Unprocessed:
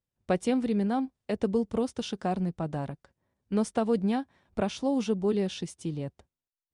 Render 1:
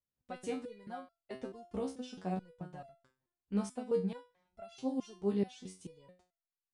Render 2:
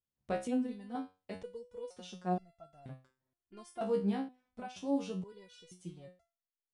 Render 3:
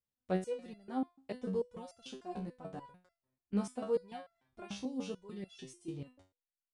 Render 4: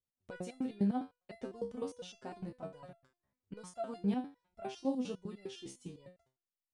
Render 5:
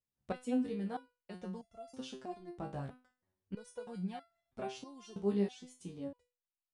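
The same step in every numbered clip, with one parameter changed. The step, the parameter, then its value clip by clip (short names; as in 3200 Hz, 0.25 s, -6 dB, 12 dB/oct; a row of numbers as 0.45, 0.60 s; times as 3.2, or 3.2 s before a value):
stepped resonator, rate: 4.6, 2.1, 6.8, 9.9, 3.1 Hz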